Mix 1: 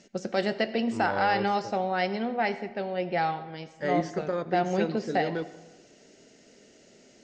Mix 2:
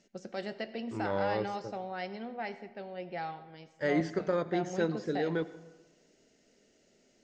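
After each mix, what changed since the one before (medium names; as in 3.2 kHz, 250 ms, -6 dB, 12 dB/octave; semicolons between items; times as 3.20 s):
first voice -11.0 dB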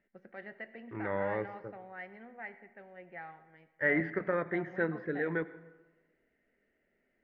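second voice +8.5 dB; master: add four-pole ladder low-pass 2.1 kHz, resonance 65%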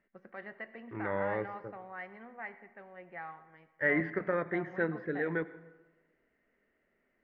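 first voice: add peaking EQ 1.1 kHz +12 dB 0.4 oct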